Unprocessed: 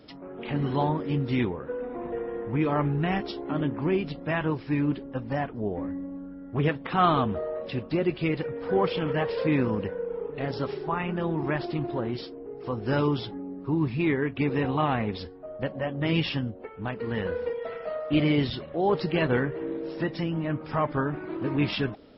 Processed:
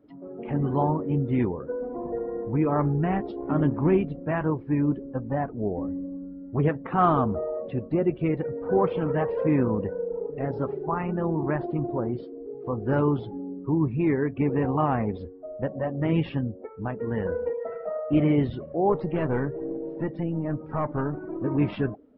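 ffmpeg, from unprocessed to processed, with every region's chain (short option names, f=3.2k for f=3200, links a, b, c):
-filter_complex "[0:a]asettb=1/sr,asplit=3[a][b][c];[a]atrim=end=3.404[d];[b]atrim=start=3.4:end=4.05,asetpts=PTS-STARTPTS,afade=t=in:d=0.004:c=qsin,afade=t=out:st=0.646:d=0.004:c=qsin,equalizer=f=500:t=o:w=3:g=-4,acontrast=61,aeval=exprs='sgn(val(0))*max(abs(val(0))-0.00708,0)':c=same[e];[c]atrim=start=4.046[f];[d][e]acrossfade=d=0.004:c1=hsin:c2=qsin[g];[g][f]acrossfade=d=0.004:c1=qsin:c2=hsin,asettb=1/sr,asplit=3[h][i][j];[h]atrim=end=18.924[k];[i]atrim=start=18.92:end=21.44,asetpts=PTS-STARTPTS,afade=t=in:d=0.004:c=qsin,afade=t=out:st=2.516:d=0.004:c=qsin,aeval=exprs='(tanh(11.2*val(0)+0.4)-tanh(0.4))/11.2':c=same,acrusher=bits=7:mode=log:mix=0:aa=0.000001[l];[j]atrim=start=21.436[m];[k][l]acrossfade=d=0.004:c1=hsin:c2=qsin[n];[n][m]acrossfade=d=0.004:c1=qsin:c2=hsin,afftdn=nr=14:nf=-40,lowpass=1.4k,volume=2dB"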